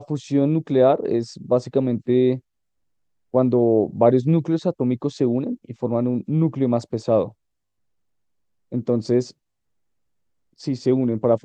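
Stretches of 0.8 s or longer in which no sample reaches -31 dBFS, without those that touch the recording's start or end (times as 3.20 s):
2.38–3.34 s
7.28–8.73 s
9.29–10.63 s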